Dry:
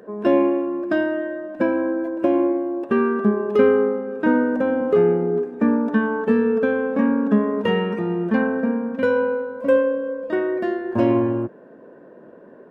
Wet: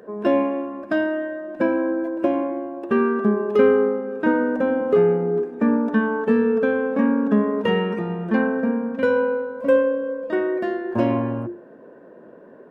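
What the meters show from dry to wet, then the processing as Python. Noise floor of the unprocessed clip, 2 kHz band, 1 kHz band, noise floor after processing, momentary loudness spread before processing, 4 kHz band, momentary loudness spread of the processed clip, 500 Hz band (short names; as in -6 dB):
-45 dBFS, 0.0 dB, 0.0 dB, -45 dBFS, 6 LU, n/a, 7 LU, -0.5 dB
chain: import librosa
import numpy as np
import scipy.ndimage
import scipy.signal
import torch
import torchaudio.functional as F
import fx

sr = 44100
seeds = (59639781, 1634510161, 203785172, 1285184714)

y = fx.hum_notches(x, sr, base_hz=50, count=7)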